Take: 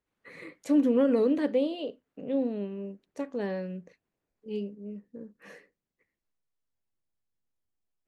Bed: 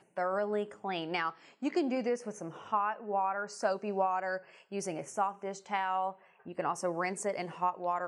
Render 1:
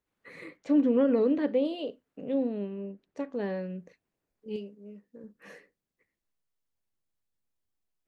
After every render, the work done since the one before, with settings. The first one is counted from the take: 0.57–1.65 air absorption 160 m; 2.34–3.79 air absorption 98 m; 4.56–5.24 low shelf 380 Hz -9.5 dB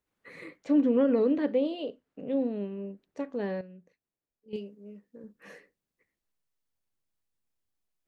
1.6–2.4 air absorption 52 m; 3.61–4.53 gain -11.5 dB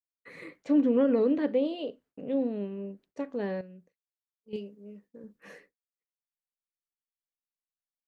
expander -54 dBFS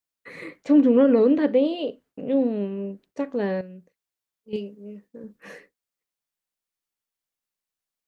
gain +7 dB

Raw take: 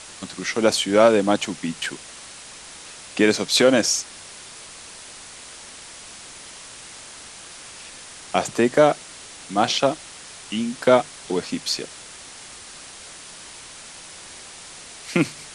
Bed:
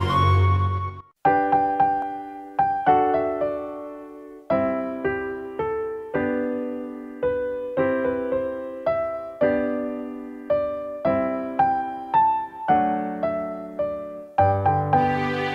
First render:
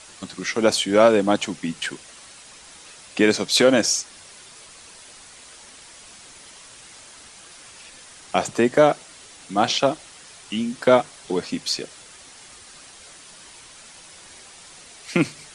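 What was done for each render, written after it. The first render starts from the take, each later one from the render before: denoiser 6 dB, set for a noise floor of -41 dBFS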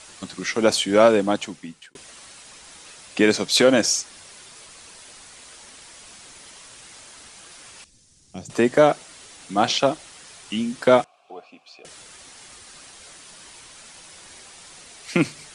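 1.1–1.95 fade out; 7.84–8.5 EQ curve 120 Hz 0 dB, 290 Hz -9 dB, 740 Hz -23 dB, 1300 Hz -26 dB, 2900 Hz -20 dB, 5900 Hz -9 dB, 11000 Hz -14 dB; 11.04–11.85 vowel filter a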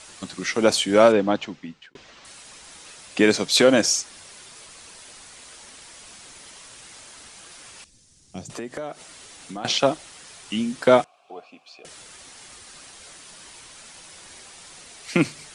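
1.12–2.25 Bessel low-pass 4000 Hz, order 6; 8.43–9.65 compressor 4:1, threshold -32 dBFS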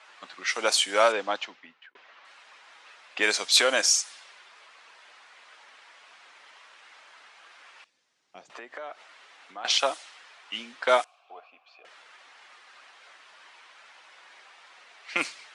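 HPF 870 Hz 12 dB/oct; low-pass opened by the level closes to 1900 Hz, open at -21 dBFS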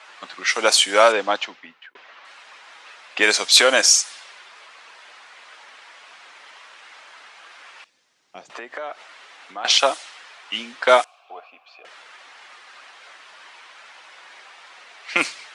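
gain +7.5 dB; limiter -1 dBFS, peak gain reduction 1 dB

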